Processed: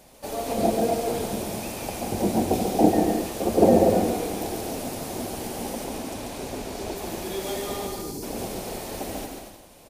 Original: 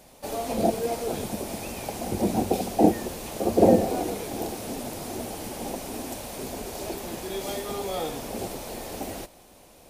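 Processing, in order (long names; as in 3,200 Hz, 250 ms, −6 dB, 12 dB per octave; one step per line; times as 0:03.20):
0:05.84–0:06.96: high-shelf EQ 10,000 Hz −9.5 dB
0:07.88–0:08.22: time-frequency box erased 460–4,000 Hz
on a send: bouncing-ball delay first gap 140 ms, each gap 0.7×, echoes 5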